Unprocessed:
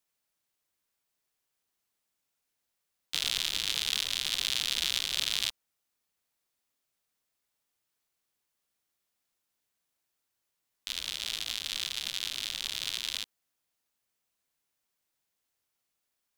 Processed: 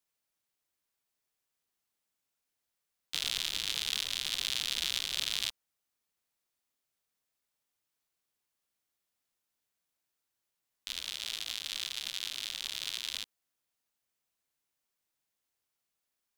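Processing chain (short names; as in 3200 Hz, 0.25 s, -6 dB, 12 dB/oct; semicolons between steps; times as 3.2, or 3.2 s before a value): 11–13.13 low shelf 270 Hz -6 dB; gain -3 dB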